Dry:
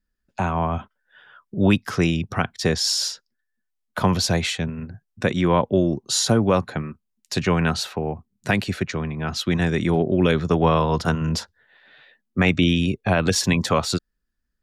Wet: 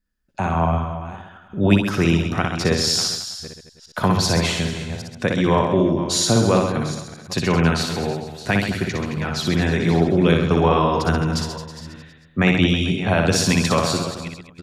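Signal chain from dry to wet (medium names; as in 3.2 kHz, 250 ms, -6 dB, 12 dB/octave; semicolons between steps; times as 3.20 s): chunks repeated in reverse 386 ms, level -13.5 dB; on a send: reverse bouncing-ball echo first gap 60 ms, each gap 1.2×, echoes 5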